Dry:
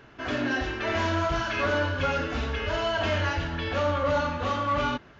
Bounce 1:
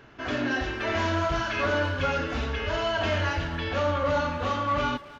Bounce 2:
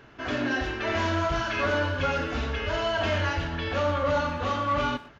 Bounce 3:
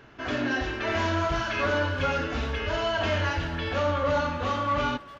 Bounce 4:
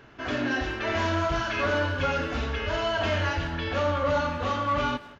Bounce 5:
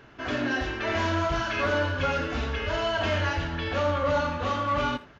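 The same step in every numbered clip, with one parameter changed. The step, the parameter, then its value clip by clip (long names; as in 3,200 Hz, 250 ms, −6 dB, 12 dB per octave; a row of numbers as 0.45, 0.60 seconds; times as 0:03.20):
far-end echo of a speakerphone, delay time: 270, 120, 400, 180, 80 milliseconds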